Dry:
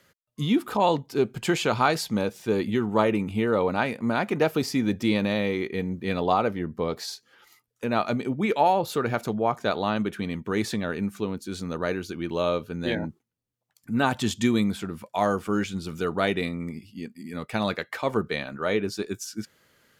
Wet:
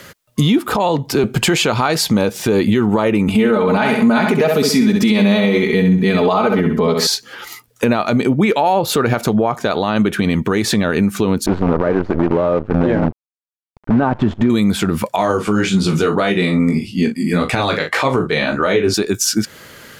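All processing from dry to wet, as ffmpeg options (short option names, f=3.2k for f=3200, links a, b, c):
-filter_complex "[0:a]asettb=1/sr,asplit=3[a][b][c];[a]atrim=end=0.584[d];[b]atrim=start=0.58:end=1.24,asetpts=PTS-STARTPTS,afade=t=in:d=0.004:c=qsin,afade=t=out:st=0.656:d=0.004:c=qsin,acrossover=split=280|900|2200[e][f][g][h];[e]acompressor=threshold=-43dB:ratio=3[i];[f]acompressor=threshold=-26dB:ratio=3[j];[g]acompressor=threshold=-40dB:ratio=3[k];[h]acompressor=threshold=-45dB:ratio=3[l];[i][j][k][l]amix=inputs=4:normalize=0,asubboost=boost=11:cutoff=200[m];[c]atrim=start=1.236[n];[d][m]acrossfade=d=0.004:c1=hsin:c2=qsin[o];[o][n]acrossfade=d=0.004:c1=qsin:c2=hsin,asettb=1/sr,asplit=3[p][q][r];[p]atrim=end=3.284[s];[q]atrim=start=3.28:end=7.07,asetpts=PTS-STARTPTS,afade=t=in:d=0.004:c=qsin,afade=t=out:st=3.786:d=0.004:c=qsin,aecho=1:1:4.7:0.82,atrim=end_sample=167139,aecho=1:1:65|130|195|260:0.447|0.147|0.0486|0.0161,atrim=end_sample=167139[t];[r]atrim=start=7.066[u];[s][t]acrossfade=d=0.004:c1=hsin:c2=qsin[v];[v][u]acrossfade=d=0.004:c1=qsin:c2=hsin,asettb=1/sr,asplit=3[w][x][y];[w]atrim=end=11.464[z];[x]atrim=start=11.46:end=14.5,asetpts=PTS-STARTPTS,afade=t=in:d=0.004:c=qsin,afade=t=out:st=3.036:d=0.004:c=qsin,acrusher=bits=6:dc=4:mix=0:aa=0.000001,lowpass=1.1k[aa];[y]atrim=start=14.496[ab];[z][aa]acrossfade=d=0.004:c1=hsin:c2=qsin[ac];[ac][ab]acrossfade=d=0.004:c1=qsin:c2=hsin,asettb=1/sr,asplit=3[ad][ae][af];[ad]atrim=end=15.164[ag];[ae]atrim=start=15.16:end=18.94,asetpts=PTS-STARTPTS,afade=t=in:d=0.004:c=qsin,afade=t=out:st=3.776:d=0.004:c=qsin,lowpass=9.9k,flanger=delay=15.5:depth=3.7:speed=1.7,asplit=2[ah][ai];[ai]adelay=39,volume=-10dB[aj];[ah][aj]amix=inputs=2:normalize=0,atrim=end_sample=166698[ak];[af]atrim=start=18.936[al];[ag][ak]acrossfade=d=0.004:c1=hsin:c2=qsin[am];[am][al]acrossfade=d=0.004:c1=qsin:c2=hsin,acompressor=threshold=-33dB:ratio=6,alimiter=level_in=28dB:limit=-1dB:release=50:level=0:latency=1,volume=-4.5dB"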